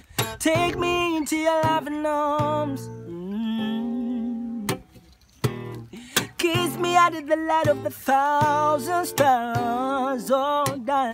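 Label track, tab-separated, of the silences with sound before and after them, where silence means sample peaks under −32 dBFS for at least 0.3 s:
4.780000	5.440000	silence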